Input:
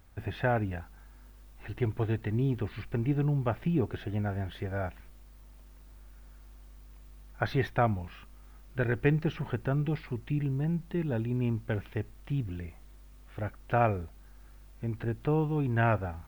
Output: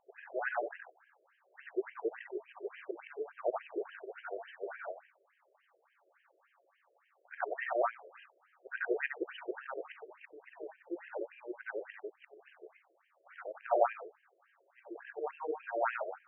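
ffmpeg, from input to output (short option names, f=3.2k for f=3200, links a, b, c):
-af "afftfilt=real='re':imag='-im':win_size=8192:overlap=0.75,adynamicsmooth=sensitivity=2.5:basefreq=5.7k,afftfilt=real='re*between(b*sr/1024,460*pow(2300/460,0.5+0.5*sin(2*PI*3.5*pts/sr))/1.41,460*pow(2300/460,0.5+0.5*sin(2*PI*3.5*pts/sr))*1.41)':imag='im*between(b*sr/1024,460*pow(2300/460,0.5+0.5*sin(2*PI*3.5*pts/sr))/1.41,460*pow(2300/460,0.5+0.5*sin(2*PI*3.5*pts/sr))*1.41)':win_size=1024:overlap=0.75,volume=6.5dB"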